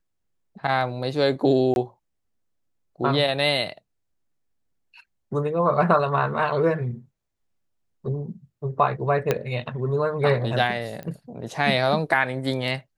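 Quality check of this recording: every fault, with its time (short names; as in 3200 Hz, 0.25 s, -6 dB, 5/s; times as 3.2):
1.74–1.76 gap 21 ms
9.31 pop -7 dBFS
11.03 pop -22 dBFS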